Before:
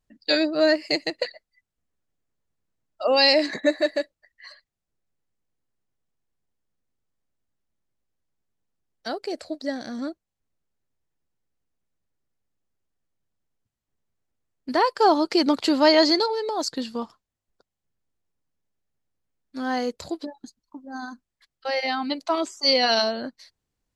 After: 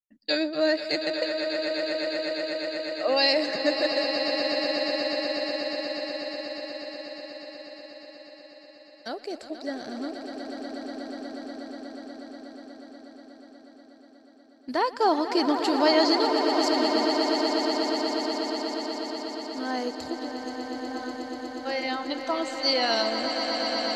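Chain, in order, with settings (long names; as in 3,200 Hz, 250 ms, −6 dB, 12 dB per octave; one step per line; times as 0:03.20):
downward expander −49 dBFS
echo that builds up and dies away 121 ms, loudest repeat 8, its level −10 dB
level −4.5 dB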